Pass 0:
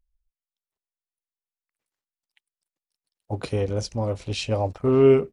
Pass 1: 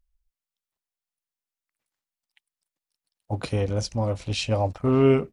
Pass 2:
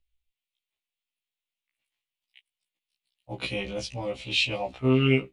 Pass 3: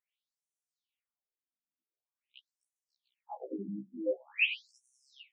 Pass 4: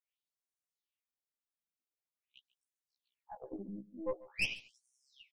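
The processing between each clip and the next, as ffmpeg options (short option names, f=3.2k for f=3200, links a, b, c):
-af "equalizer=f=410:t=o:w=0.5:g=-6,volume=1.5dB"
-filter_complex "[0:a]acrossover=split=300|3300[a][b][c];[b]aexciter=amount=10.1:drive=4.6:freq=2.3k[d];[a][d][c]amix=inputs=3:normalize=0,afftfilt=real='re*1.73*eq(mod(b,3),0)':imag='im*1.73*eq(mod(b,3),0)':win_size=2048:overlap=0.75,volume=-2.5dB"
-af "afftfilt=real='re*between(b*sr/1024,220*pow(8000/220,0.5+0.5*sin(2*PI*0.46*pts/sr))/1.41,220*pow(8000/220,0.5+0.5*sin(2*PI*0.46*pts/sr))*1.41)':imag='im*between(b*sr/1024,220*pow(8000/220,0.5+0.5*sin(2*PI*0.46*pts/sr))/1.41,220*pow(8000/220,0.5+0.5*sin(2*PI*0.46*pts/sr))*1.41)':win_size=1024:overlap=0.75,volume=1.5dB"
-af "aeval=exprs='(tanh(17.8*val(0)+0.75)-tanh(0.75))/17.8':c=same,aecho=1:1:142:0.1,volume=-1dB"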